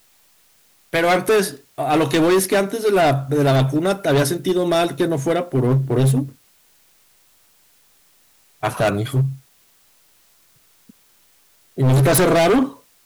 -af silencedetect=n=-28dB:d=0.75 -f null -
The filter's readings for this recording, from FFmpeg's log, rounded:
silence_start: 0.00
silence_end: 0.93 | silence_duration: 0.93
silence_start: 6.27
silence_end: 8.63 | silence_duration: 2.36
silence_start: 9.33
silence_end: 11.78 | silence_duration: 2.45